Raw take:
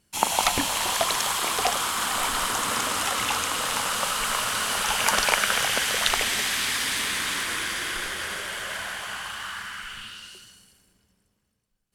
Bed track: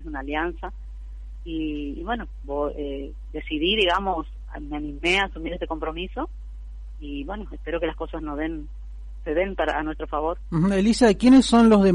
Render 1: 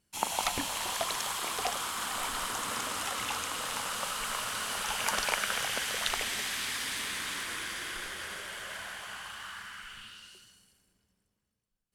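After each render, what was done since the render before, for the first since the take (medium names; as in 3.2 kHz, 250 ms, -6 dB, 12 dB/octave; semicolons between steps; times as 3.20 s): trim -8.5 dB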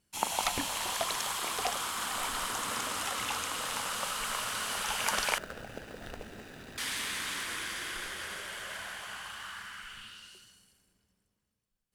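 5.38–6.78 s: median filter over 41 samples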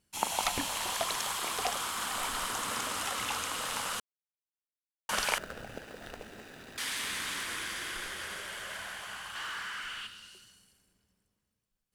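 4.00–5.09 s: mute; 5.78–7.03 s: bass shelf 210 Hz -6.5 dB; 9.35–10.07 s: overdrive pedal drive 15 dB, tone 5.5 kHz, clips at -31 dBFS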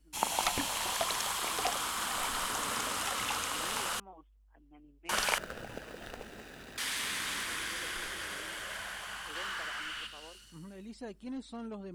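add bed track -27.5 dB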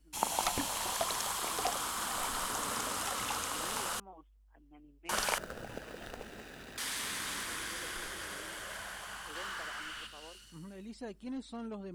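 dynamic bell 2.5 kHz, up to -5 dB, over -49 dBFS, Q 0.91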